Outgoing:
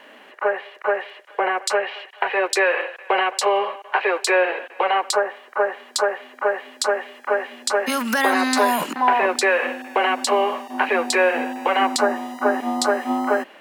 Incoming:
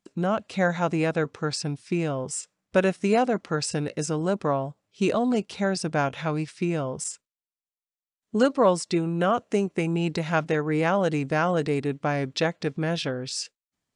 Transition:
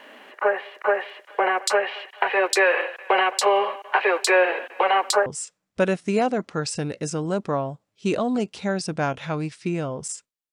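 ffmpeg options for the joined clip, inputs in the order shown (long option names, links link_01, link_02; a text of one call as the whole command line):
ffmpeg -i cue0.wav -i cue1.wav -filter_complex "[0:a]apad=whole_dur=10.52,atrim=end=10.52,atrim=end=5.262[link_01];[1:a]atrim=start=2.218:end=7.48[link_02];[link_01][link_02]acrossfade=duration=0.004:curve1=hsin:curve2=hsin" out.wav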